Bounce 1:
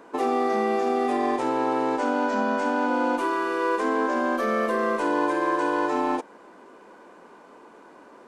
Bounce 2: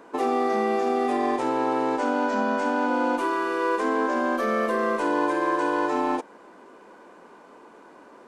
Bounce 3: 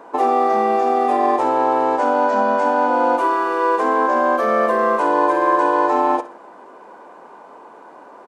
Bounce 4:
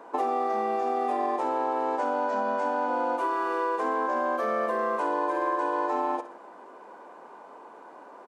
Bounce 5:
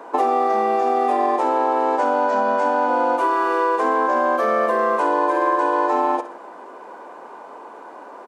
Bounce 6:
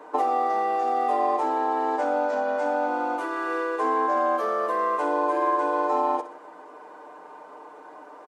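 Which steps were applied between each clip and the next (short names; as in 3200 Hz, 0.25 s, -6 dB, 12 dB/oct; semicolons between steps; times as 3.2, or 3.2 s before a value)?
nothing audible
bell 800 Hz +11 dB 1.5 oct; feedback echo 63 ms, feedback 40%, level -14.5 dB
HPF 170 Hz 12 dB/oct; compressor 4:1, threshold -19 dBFS, peak gain reduction 6.5 dB; gain -5.5 dB
HPF 190 Hz 12 dB/oct; gain +8.5 dB
comb 6.6 ms, depth 74%; gain -7.5 dB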